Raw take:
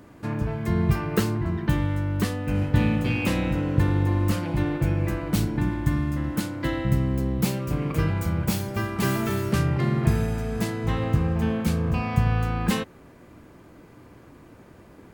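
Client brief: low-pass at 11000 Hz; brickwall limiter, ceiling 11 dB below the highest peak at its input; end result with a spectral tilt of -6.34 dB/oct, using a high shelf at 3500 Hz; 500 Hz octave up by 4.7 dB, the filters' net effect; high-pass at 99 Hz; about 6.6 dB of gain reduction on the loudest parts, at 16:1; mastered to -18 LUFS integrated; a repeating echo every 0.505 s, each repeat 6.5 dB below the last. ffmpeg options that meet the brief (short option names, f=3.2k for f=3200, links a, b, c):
-af "highpass=99,lowpass=11k,equalizer=f=500:t=o:g=6,highshelf=f=3.5k:g=-5,acompressor=threshold=-23dB:ratio=16,alimiter=limit=-23dB:level=0:latency=1,aecho=1:1:505|1010|1515|2020|2525|3030:0.473|0.222|0.105|0.0491|0.0231|0.0109,volume=12.5dB"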